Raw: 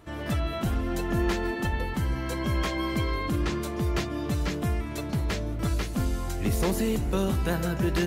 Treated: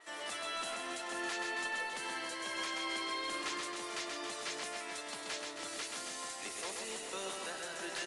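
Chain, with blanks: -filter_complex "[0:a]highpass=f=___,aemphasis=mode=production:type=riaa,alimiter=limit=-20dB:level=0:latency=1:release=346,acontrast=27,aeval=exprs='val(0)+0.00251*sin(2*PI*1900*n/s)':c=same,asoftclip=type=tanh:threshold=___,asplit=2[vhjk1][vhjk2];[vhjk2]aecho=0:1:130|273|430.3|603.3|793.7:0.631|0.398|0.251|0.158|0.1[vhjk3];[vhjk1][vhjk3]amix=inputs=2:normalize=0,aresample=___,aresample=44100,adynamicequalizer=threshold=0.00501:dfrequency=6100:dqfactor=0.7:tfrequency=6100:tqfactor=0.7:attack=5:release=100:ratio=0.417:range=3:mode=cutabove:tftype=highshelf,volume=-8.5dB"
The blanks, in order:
480, -24dB, 22050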